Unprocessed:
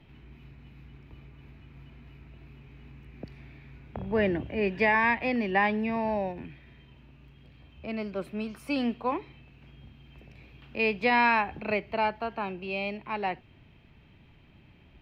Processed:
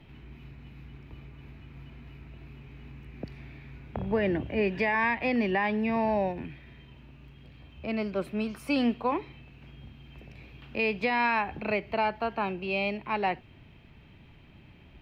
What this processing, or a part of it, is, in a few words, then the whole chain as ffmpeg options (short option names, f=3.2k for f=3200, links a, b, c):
stacked limiters: -af "alimiter=limit=-17dB:level=0:latency=1:release=441,alimiter=limit=-20.5dB:level=0:latency=1:release=101,volume=3dB"